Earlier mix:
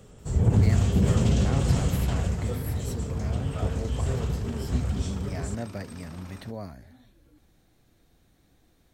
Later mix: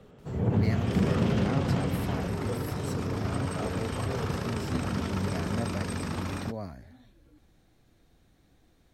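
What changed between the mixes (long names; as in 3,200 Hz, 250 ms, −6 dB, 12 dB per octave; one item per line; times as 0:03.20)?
first sound: add band-pass filter 150–3,100 Hz
second sound +12.0 dB
master: add high-shelf EQ 7,800 Hz −7 dB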